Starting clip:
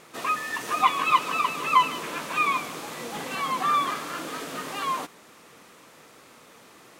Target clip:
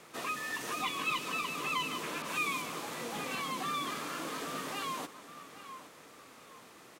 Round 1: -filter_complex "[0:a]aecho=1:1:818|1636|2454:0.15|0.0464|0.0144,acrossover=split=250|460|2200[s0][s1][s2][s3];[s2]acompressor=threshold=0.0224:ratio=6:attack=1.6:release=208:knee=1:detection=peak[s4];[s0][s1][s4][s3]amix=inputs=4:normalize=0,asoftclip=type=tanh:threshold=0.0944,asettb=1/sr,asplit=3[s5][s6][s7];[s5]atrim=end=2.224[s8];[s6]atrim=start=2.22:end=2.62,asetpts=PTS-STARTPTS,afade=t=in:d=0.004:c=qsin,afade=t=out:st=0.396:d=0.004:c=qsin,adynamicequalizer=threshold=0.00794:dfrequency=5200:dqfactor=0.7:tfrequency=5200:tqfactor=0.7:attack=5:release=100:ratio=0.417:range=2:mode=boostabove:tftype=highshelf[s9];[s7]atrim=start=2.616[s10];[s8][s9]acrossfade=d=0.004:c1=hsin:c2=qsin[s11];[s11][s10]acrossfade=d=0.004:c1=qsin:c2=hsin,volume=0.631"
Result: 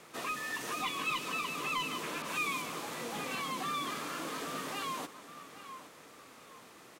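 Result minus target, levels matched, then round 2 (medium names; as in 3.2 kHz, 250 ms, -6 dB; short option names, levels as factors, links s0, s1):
saturation: distortion +11 dB
-filter_complex "[0:a]aecho=1:1:818|1636|2454:0.15|0.0464|0.0144,acrossover=split=250|460|2200[s0][s1][s2][s3];[s2]acompressor=threshold=0.0224:ratio=6:attack=1.6:release=208:knee=1:detection=peak[s4];[s0][s1][s4][s3]amix=inputs=4:normalize=0,asoftclip=type=tanh:threshold=0.2,asettb=1/sr,asplit=3[s5][s6][s7];[s5]atrim=end=2.224[s8];[s6]atrim=start=2.22:end=2.62,asetpts=PTS-STARTPTS,afade=t=in:d=0.004:c=qsin,afade=t=out:st=0.396:d=0.004:c=qsin,adynamicequalizer=threshold=0.00794:dfrequency=5200:dqfactor=0.7:tfrequency=5200:tqfactor=0.7:attack=5:release=100:ratio=0.417:range=2:mode=boostabove:tftype=highshelf[s9];[s7]atrim=start=2.616[s10];[s8][s9]acrossfade=d=0.004:c1=hsin:c2=qsin[s11];[s11][s10]acrossfade=d=0.004:c1=qsin:c2=hsin,volume=0.631"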